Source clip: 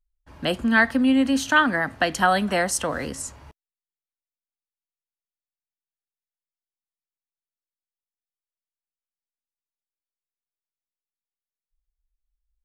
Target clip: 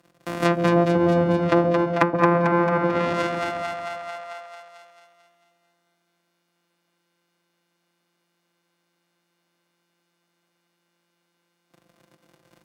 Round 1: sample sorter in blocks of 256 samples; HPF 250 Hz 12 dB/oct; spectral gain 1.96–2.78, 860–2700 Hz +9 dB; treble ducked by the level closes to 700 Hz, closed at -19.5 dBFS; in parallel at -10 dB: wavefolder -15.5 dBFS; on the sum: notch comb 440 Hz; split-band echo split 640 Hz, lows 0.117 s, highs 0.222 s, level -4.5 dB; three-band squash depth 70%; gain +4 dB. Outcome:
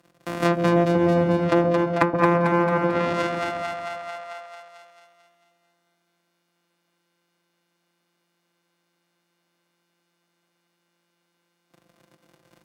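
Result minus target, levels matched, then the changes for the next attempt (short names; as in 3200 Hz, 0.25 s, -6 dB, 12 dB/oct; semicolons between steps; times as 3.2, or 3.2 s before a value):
wavefolder: distortion +13 dB
change: wavefolder -8 dBFS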